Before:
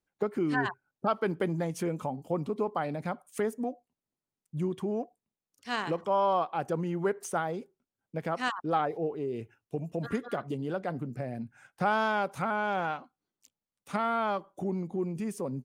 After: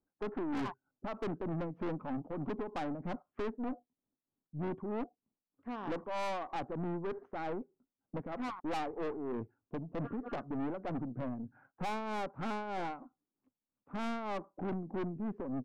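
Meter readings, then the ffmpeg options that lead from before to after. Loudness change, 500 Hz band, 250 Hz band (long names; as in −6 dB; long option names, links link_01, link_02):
−7.5 dB, −8.5 dB, −4.0 dB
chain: -af "tremolo=f=3.2:d=0.67,lowpass=frequency=1300:width=0.5412,lowpass=frequency=1300:width=1.3066,equalizer=frequency=270:width_type=o:width=0.49:gain=9.5,aeval=exprs='(tanh(63.1*val(0)+0.4)-tanh(0.4))/63.1':channel_layout=same,volume=2dB"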